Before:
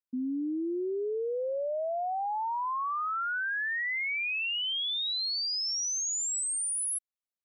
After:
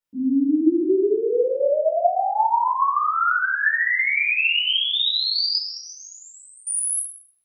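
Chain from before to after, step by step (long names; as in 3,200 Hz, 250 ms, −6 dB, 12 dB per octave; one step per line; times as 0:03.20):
0:05.57–0:06.67: low-pass filter 2,500 Hz 12 dB per octave
rectangular room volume 480 cubic metres, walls mixed, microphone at 4.5 metres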